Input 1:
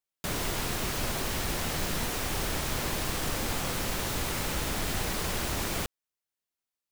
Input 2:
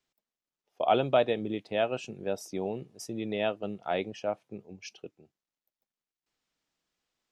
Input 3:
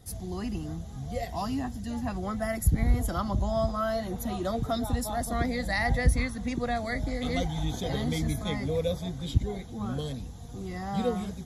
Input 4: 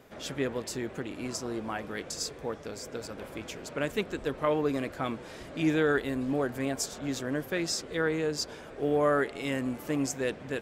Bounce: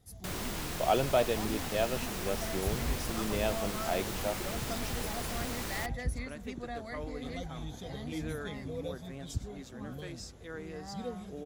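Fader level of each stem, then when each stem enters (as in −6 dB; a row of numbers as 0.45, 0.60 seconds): −6.5, −3.0, −11.0, −15.0 decibels; 0.00, 0.00, 0.00, 2.50 seconds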